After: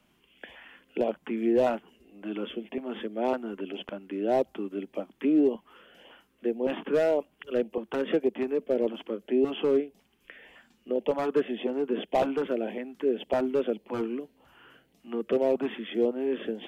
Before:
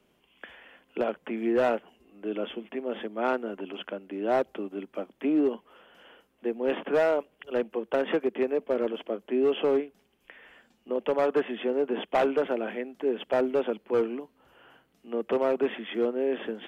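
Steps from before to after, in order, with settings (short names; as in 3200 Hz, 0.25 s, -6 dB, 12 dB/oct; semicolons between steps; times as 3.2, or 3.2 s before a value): LFO notch saw up 1.8 Hz 380–1600 Hz; dynamic EQ 1800 Hz, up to -6 dB, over -45 dBFS, Q 0.7; gain +2.5 dB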